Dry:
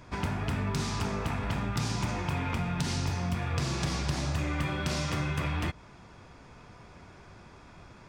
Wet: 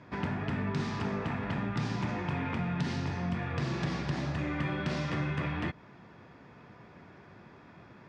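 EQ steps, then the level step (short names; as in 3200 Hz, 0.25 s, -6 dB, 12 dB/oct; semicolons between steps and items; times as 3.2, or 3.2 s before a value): BPF 150–3800 Hz; low shelf 420 Hz +7 dB; bell 1800 Hz +6 dB 0.25 oct; -3.5 dB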